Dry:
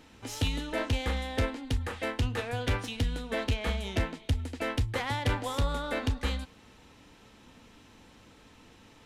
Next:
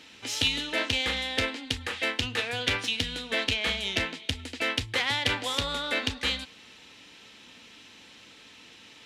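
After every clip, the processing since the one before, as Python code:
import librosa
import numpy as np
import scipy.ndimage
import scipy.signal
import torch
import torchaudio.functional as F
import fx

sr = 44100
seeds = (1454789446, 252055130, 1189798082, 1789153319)

y = fx.weighting(x, sr, curve='D')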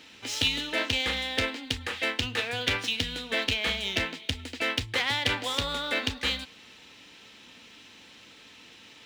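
y = scipy.signal.medfilt(x, 3)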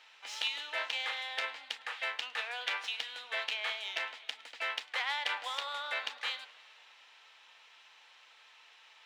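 y = scipy.signal.sosfilt(scipy.signal.butter(4, 800.0, 'highpass', fs=sr, output='sos'), x)
y = fx.tilt_eq(y, sr, slope=-3.5)
y = fx.echo_warbled(y, sr, ms=105, feedback_pct=78, rate_hz=2.8, cents=194, wet_db=-24.0)
y = y * librosa.db_to_amplitude(-2.5)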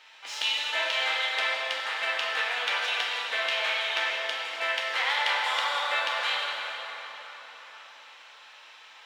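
y = fx.rev_plate(x, sr, seeds[0], rt60_s=4.7, hf_ratio=0.6, predelay_ms=0, drr_db=-4.0)
y = y * librosa.db_to_amplitude(4.0)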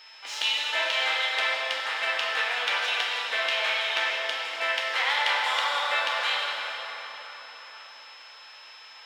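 y = x + 10.0 ** (-51.0 / 20.0) * np.sin(2.0 * np.pi * 5200.0 * np.arange(len(x)) / sr)
y = y * librosa.db_to_amplitude(1.5)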